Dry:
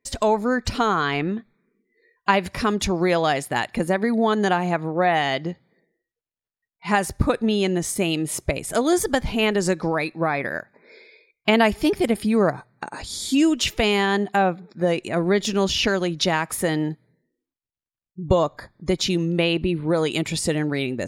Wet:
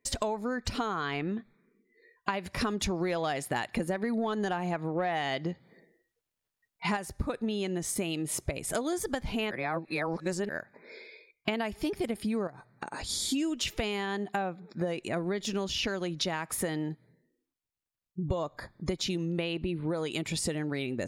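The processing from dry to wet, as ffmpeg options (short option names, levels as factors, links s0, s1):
-filter_complex "[0:a]asettb=1/sr,asplit=3[s0][s1][s2];[s0]atrim=end=2.614[s3];[s1]atrim=start=2.61:end=6.97,asetpts=PTS-STARTPTS,afade=t=in:d=0.004:c=qsin,afade=t=out:st=4.356:d=0.004:c=qsin,acontrast=50[s4];[s2]atrim=start=6.966[s5];[s3][s4]acrossfade=d=0.004:c1=hsin:c2=qsin[s6];[s6][s5]acrossfade=d=0.004:c1=qsin:c2=hsin,asettb=1/sr,asplit=3[s7][s8][s9];[s7]atrim=end=12.474[s10];[s8]atrim=start=12.47:end=13.09,asetpts=PTS-STARTPTS,afade=t=in:d=0.004:c=qsin,afade=t=out:st=0.616:d=0.004:c=qsin,acompressor=threshold=0.0141:ratio=2:attack=3.2:release=140:knee=1:detection=peak[s11];[s9]atrim=start=13.086[s12];[s10][s11]acrossfade=d=0.004:c1=hsin:c2=qsin[s13];[s13][s12]acrossfade=d=0.004:c1=qsin:c2=hsin,asplit=3[s14][s15][s16];[s14]atrim=end=9.512[s17];[s15]atrim=start=9.508:end=10.492,asetpts=PTS-STARTPTS,areverse[s18];[s16]atrim=start=10.488[s19];[s17][s18]acrossfade=d=0.004:c1=hsin:c2=hsin[s20];[s20][s19]acrossfade=d=0.004:c1=hsin:c2=hsin,acompressor=threshold=0.0355:ratio=6"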